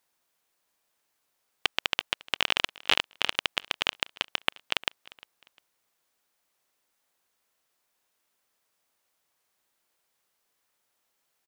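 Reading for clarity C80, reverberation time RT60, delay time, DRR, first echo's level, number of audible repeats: no reverb audible, no reverb audible, 352 ms, no reverb audible, −22.0 dB, 2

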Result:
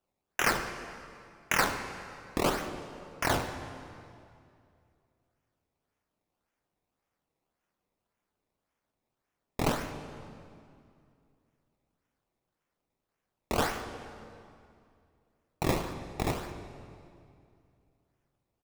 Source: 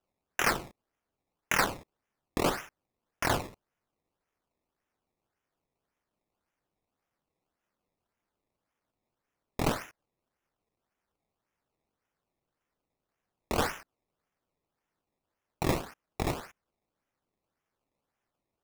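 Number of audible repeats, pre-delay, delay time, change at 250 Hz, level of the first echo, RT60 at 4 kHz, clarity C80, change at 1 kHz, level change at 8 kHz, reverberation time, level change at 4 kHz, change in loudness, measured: 1, 16 ms, 73 ms, +1.0 dB, −16.5 dB, 1.9 s, 9.0 dB, +1.0 dB, +0.5 dB, 2.4 s, +0.5 dB, −1.0 dB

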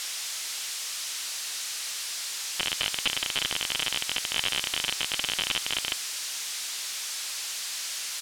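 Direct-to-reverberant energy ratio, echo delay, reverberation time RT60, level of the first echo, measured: no reverb audible, 121 ms, no reverb audible, −22.5 dB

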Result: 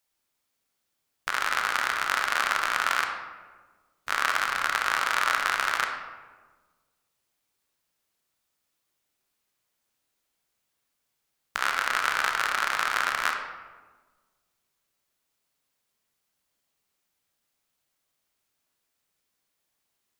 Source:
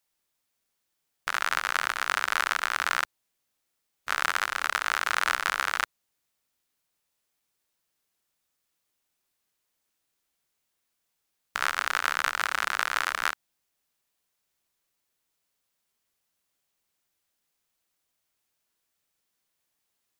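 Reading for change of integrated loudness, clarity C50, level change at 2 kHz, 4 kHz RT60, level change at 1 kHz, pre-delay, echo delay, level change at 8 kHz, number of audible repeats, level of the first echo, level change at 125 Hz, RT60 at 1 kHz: +1.5 dB, 5.0 dB, +1.5 dB, 0.75 s, +2.0 dB, 25 ms, no echo audible, +0.5 dB, no echo audible, no echo audible, can't be measured, 1.3 s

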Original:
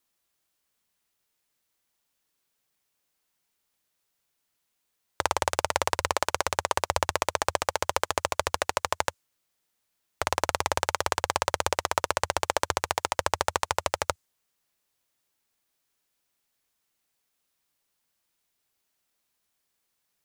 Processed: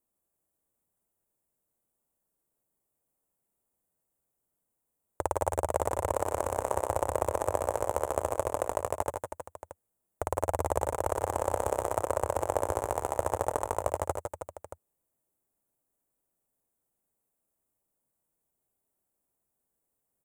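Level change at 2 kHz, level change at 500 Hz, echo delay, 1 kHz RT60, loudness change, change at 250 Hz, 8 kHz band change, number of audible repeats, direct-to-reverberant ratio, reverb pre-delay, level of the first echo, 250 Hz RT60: −13.0 dB, +1.5 dB, 57 ms, no reverb audible, −3.5 dB, +1.5 dB, −7.5 dB, 4, no reverb audible, no reverb audible, −11.5 dB, no reverb audible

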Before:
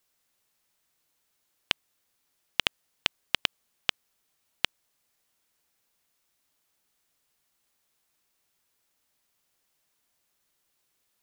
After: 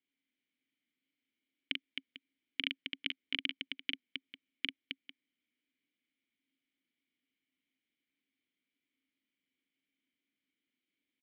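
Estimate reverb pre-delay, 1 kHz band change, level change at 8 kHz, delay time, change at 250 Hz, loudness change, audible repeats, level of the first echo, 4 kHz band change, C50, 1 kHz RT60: no reverb audible, −23.5 dB, below −30 dB, 41 ms, +1.0 dB, −8.5 dB, 3, −4.0 dB, −7.0 dB, no reverb audible, no reverb audible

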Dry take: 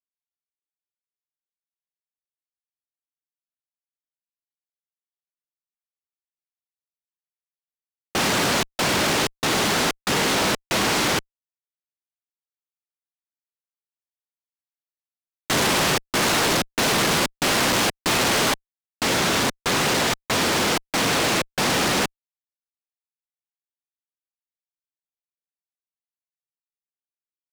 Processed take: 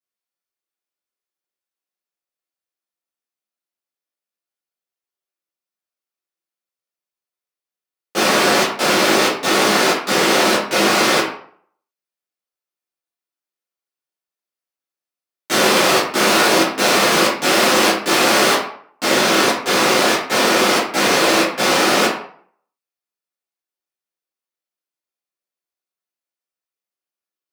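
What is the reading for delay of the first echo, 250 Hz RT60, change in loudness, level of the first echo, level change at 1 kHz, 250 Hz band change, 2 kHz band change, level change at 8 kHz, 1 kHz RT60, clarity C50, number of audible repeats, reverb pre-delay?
no echo audible, 0.50 s, +6.0 dB, no echo audible, +7.0 dB, +6.0 dB, +6.5 dB, +4.0 dB, 0.55 s, 4.0 dB, no echo audible, 8 ms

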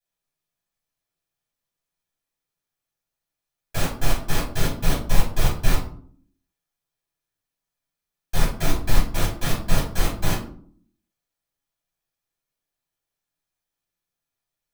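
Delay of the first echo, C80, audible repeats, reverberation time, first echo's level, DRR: no echo audible, 11.5 dB, no echo audible, 0.55 s, no echo audible, −8.5 dB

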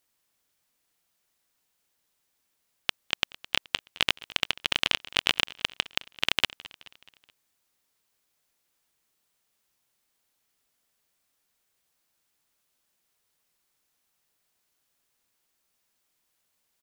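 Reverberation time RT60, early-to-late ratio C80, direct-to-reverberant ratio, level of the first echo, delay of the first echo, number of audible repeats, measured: no reverb audible, no reverb audible, no reverb audible, −20.0 dB, 213 ms, 3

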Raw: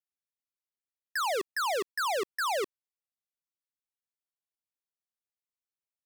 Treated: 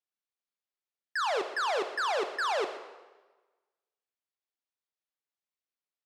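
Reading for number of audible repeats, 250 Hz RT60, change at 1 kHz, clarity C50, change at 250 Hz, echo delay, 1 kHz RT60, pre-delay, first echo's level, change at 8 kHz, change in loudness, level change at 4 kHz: 1, 1.2 s, +1.0 dB, 9.0 dB, 0.0 dB, 128 ms, 1.2 s, 3 ms, −15.0 dB, −6.5 dB, +0.5 dB, −0.5 dB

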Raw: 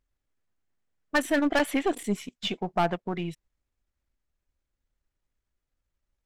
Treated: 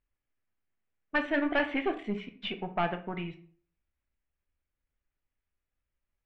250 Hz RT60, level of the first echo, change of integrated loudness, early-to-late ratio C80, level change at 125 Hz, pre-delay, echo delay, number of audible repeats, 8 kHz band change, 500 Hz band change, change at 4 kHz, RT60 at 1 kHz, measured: 0.50 s, no echo audible, −4.0 dB, 17.0 dB, −5.0 dB, 8 ms, no echo audible, no echo audible, below −30 dB, −4.5 dB, −5.5 dB, 0.45 s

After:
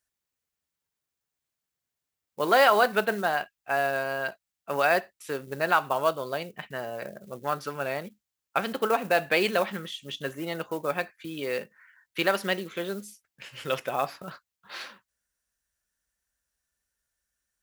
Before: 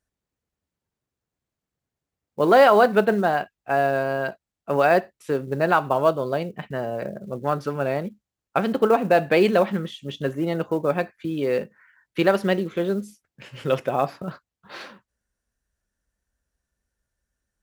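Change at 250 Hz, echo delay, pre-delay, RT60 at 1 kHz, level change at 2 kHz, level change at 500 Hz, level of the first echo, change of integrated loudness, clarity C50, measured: −10.5 dB, no echo audible, no reverb audible, no reverb audible, −0.5 dB, −7.5 dB, no echo audible, −5.5 dB, no reverb audible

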